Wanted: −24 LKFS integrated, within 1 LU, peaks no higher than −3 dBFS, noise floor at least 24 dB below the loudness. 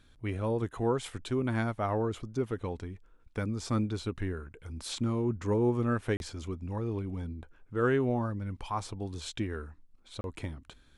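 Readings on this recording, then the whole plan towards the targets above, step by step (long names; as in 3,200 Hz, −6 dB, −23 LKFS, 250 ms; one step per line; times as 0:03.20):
number of dropouts 2; longest dropout 31 ms; integrated loudness −33.0 LKFS; sample peak −15.5 dBFS; target loudness −24.0 LKFS
→ repair the gap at 0:06.17/0:10.21, 31 ms
level +9 dB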